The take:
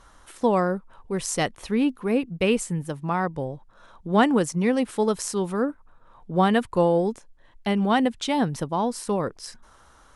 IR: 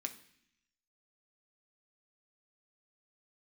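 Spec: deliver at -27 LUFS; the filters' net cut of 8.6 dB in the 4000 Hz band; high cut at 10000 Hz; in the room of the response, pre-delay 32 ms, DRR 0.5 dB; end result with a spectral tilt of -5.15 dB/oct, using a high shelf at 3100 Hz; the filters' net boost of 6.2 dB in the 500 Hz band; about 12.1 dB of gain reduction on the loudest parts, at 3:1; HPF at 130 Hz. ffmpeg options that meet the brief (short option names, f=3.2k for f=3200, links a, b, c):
-filter_complex "[0:a]highpass=130,lowpass=10k,equalizer=f=500:t=o:g=7.5,highshelf=f=3.1k:g=-8,equalizer=f=4k:t=o:g=-6.5,acompressor=threshold=-28dB:ratio=3,asplit=2[a][b];[1:a]atrim=start_sample=2205,adelay=32[c];[b][c]afir=irnorm=-1:irlink=0,volume=1dB[d];[a][d]amix=inputs=2:normalize=0,volume=1.5dB"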